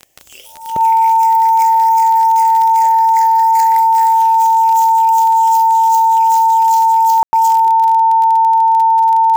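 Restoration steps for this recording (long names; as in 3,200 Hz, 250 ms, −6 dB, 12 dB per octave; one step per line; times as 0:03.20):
click removal
notch filter 900 Hz, Q 30
ambience match 0:07.23–0:07.33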